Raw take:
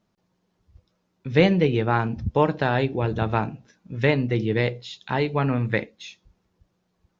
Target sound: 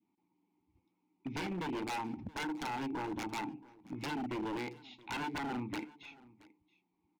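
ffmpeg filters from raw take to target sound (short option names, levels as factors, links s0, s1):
-filter_complex "[0:a]adynamicequalizer=threshold=0.0158:dfrequency=970:dqfactor=0.91:tfrequency=970:tqfactor=0.91:attack=5:release=100:ratio=0.375:range=3:mode=boostabove:tftype=bell,acompressor=threshold=0.0708:ratio=4,aeval=exprs='(mod(4.73*val(0)+1,2)-1)/4.73':c=same,asplit=3[s0][s1][s2];[s0]bandpass=f=300:t=q:w=8,volume=1[s3];[s1]bandpass=f=870:t=q:w=8,volume=0.501[s4];[s2]bandpass=f=2240:t=q:w=8,volume=0.355[s5];[s3][s4][s5]amix=inputs=3:normalize=0,aeval=exprs='0.0126*(abs(mod(val(0)/0.0126+3,4)-2)-1)':c=same,aecho=1:1:675:0.0794,volume=1.88"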